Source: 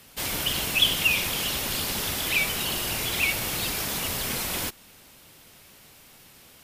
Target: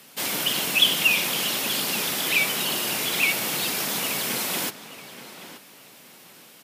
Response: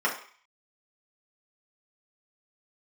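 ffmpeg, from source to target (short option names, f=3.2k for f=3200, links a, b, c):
-filter_complex "[0:a]highpass=f=160:w=0.5412,highpass=f=160:w=1.3066,asplit=2[a][b];[b]adelay=877,lowpass=f=3.7k:p=1,volume=-12.5dB,asplit=2[c][d];[d]adelay=877,lowpass=f=3.7k:p=1,volume=0.26,asplit=2[e][f];[f]adelay=877,lowpass=f=3.7k:p=1,volume=0.26[g];[a][c][e][g]amix=inputs=4:normalize=0,volume=2.5dB"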